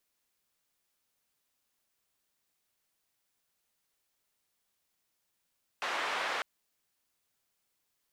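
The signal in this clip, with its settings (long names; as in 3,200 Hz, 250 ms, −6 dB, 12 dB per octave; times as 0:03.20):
band-limited noise 610–1,900 Hz, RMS −34 dBFS 0.60 s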